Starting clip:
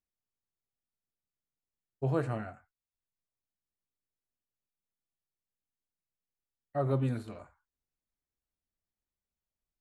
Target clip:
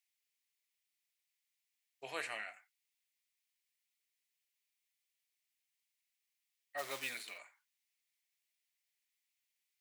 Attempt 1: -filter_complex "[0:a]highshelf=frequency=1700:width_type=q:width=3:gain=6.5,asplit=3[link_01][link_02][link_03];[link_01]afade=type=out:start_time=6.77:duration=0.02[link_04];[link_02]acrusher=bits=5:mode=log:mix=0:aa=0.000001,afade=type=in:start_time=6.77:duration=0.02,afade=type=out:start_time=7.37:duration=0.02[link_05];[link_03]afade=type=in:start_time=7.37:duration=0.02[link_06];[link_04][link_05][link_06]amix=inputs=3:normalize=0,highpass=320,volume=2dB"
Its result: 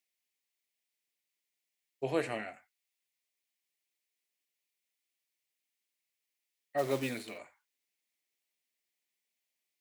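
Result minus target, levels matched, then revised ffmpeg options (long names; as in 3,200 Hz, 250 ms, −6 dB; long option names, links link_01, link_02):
250 Hz band +13.0 dB
-filter_complex "[0:a]highshelf=frequency=1700:width_type=q:width=3:gain=6.5,asplit=3[link_01][link_02][link_03];[link_01]afade=type=out:start_time=6.77:duration=0.02[link_04];[link_02]acrusher=bits=5:mode=log:mix=0:aa=0.000001,afade=type=in:start_time=6.77:duration=0.02,afade=type=out:start_time=7.37:duration=0.02[link_05];[link_03]afade=type=in:start_time=7.37:duration=0.02[link_06];[link_04][link_05][link_06]amix=inputs=3:normalize=0,highpass=1200,volume=2dB"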